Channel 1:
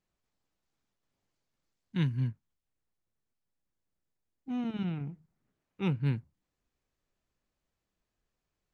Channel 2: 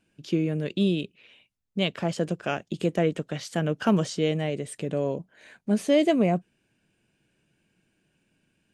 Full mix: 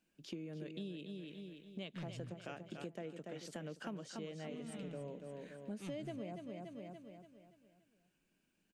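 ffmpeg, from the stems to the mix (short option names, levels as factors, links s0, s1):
-filter_complex "[0:a]highshelf=f=4600:g=10,asoftclip=type=tanh:threshold=0.0422,volume=0.501,asplit=2[s0][s1];[s1]volume=0.188[s2];[1:a]highpass=f=150:w=0.5412,highpass=f=150:w=1.3066,volume=0.299,asplit=2[s3][s4];[s4]volume=0.376[s5];[s2][s5]amix=inputs=2:normalize=0,aecho=0:1:287|574|861|1148|1435|1722:1|0.42|0.176|0.0741|0.0311|0.0131[s6];[s0][s3][s6]amix=inputs=3:normalize=0,acompressor=threshold=0.00631:ratio=4"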